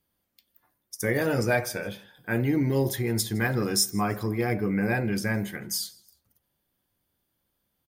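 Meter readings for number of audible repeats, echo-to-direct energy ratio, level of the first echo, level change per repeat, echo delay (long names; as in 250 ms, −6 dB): 2, −23.5 dB, −24.0 dB, −9.5 dB, 160 ms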